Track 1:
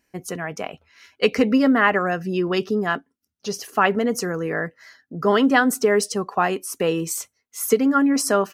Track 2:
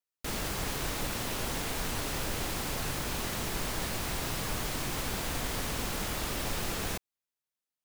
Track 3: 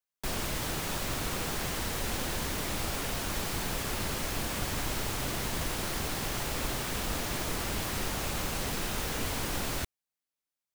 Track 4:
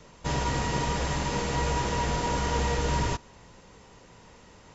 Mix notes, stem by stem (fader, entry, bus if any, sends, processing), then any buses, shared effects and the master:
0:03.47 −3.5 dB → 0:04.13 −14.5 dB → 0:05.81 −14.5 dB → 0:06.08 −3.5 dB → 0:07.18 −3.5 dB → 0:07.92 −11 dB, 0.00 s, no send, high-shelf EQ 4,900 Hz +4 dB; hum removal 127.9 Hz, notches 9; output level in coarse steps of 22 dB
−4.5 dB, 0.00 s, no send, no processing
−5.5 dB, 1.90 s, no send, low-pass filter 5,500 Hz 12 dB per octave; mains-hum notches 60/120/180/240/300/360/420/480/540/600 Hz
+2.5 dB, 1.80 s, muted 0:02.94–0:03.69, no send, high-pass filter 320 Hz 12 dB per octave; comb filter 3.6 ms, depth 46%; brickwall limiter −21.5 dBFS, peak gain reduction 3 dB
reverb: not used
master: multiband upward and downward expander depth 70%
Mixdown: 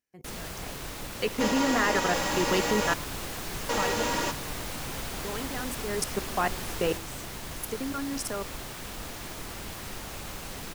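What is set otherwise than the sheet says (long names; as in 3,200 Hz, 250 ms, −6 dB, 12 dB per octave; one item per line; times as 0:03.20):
stem 3: missing low-pass filter 5,500 Hz 12 dB per octave
stem 4: entry 1.80 s → 1.15 s
master: missing multiband upward and downward expander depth 70%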